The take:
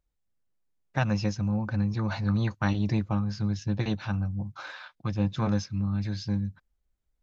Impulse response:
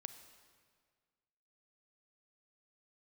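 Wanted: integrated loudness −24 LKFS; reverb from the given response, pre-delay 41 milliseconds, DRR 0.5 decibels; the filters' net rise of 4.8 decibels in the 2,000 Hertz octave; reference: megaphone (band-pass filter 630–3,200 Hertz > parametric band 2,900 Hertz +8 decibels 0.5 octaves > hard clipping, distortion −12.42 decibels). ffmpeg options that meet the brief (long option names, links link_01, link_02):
-filter_complex "[0:a]equalizer=frequency=2000:width_type=o:gain=5.5,asplit=2[link_01][link_02];[1:a]atrim=start_sample=2205,adelay=41[link_03];[link_02][link_03]afir=irnorm=-1:irlink=0,volume=4dB[link_04];[link_01][link_04]amix=inputs=2:normalize=0,highpass=630,lowpass=3200,equalizer=frequency=2900:width_type=o:width=0.5:gain=8,asoftclip=type=hard:threshold=-22.5dB,volume=11dB"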